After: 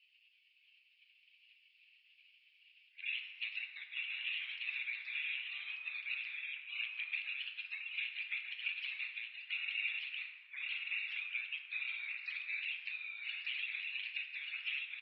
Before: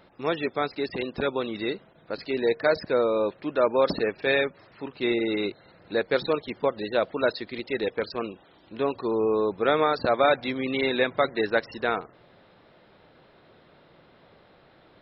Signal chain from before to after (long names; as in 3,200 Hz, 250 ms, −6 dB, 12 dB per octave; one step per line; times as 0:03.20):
played backwards from end to start
gate on every frequency bin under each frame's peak −25 dB weak
brickwall limiter −33 dBFS, peak gain reduction 10 dB
downward compressor, threshold −50 dBFS, peak gain reduction 10.5 dB
flat-topped band-pass 2,600 Hz, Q 3.7
on a send: single-tap delay 1,187 ms −3 dB
on the sum: dense smooth reverb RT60 1.6 s, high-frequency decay 0.5×, DRR 3.5 dB
level +18 dB